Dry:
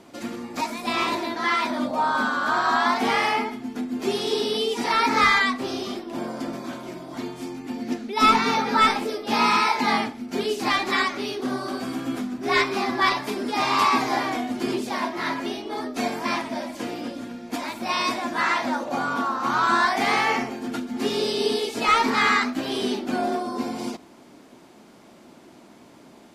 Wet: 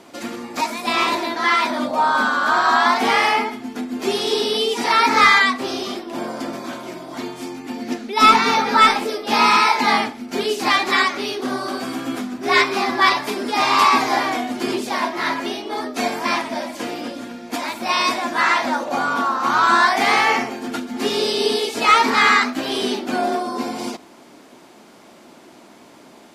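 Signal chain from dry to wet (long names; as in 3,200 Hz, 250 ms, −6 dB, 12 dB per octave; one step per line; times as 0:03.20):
low-shelf EQ 240 Hz −9 dB
level +6 dB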